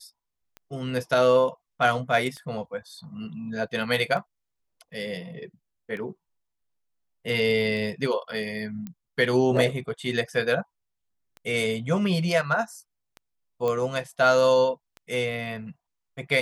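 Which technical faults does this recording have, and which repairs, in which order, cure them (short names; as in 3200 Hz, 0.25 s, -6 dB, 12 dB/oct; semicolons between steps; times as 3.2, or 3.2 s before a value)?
tick 33 1/3 rpm -26 dBFS
8.87 pop -23 dBFS
13.68 pop -16 dBFS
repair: de-click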